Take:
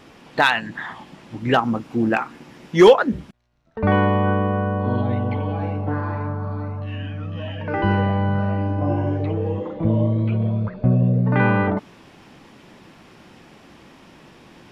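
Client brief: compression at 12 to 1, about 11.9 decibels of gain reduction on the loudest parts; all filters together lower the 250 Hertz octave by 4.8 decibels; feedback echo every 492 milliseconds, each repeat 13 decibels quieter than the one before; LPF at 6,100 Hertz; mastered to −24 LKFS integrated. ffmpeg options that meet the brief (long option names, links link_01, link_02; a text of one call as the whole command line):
ffmpeg -i in.wav -af "lowpass=6100,equalizer=frequency=250:width_type=o:gain=-7,acompressor=threshold=-20dB:ratio=12,aecho=1:1:492|984|1476:0.224|0.0493|0.0108,volume=3dB" out.wav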